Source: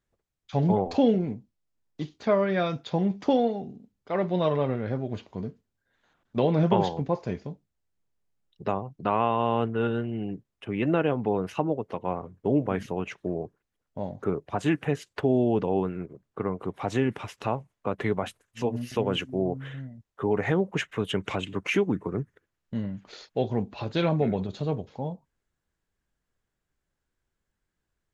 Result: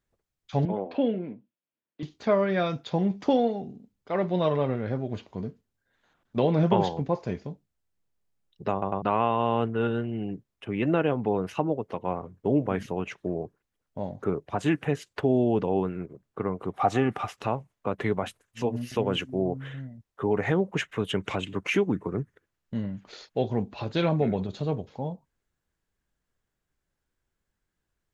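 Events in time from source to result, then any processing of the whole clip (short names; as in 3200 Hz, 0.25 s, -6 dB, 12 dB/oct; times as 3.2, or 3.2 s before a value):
0.65–2.03 speaker cabinet 280–3000 Hz, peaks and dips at 420 Hz -6 dB, 790 Hz -9 dB, 1200 Hz -5 dB, 2000 Hz -4 dB
8.72 stutter in place 0.10 s, 3 plays
16.73–17.37 small resonant body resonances 760/1200 Hz, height 14 dB, ringing for 30 ms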